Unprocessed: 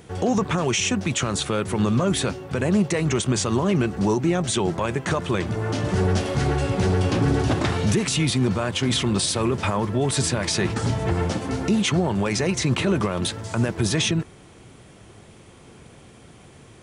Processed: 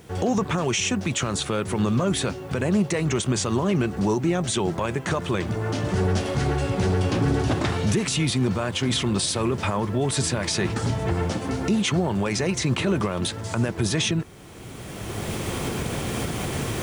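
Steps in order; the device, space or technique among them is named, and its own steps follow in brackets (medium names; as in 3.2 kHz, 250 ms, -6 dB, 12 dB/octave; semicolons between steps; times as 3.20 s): cheap recorder with automatic gain (white noise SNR 40 dB; recorder AGC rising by 18 dB/s); trim -1.5 dB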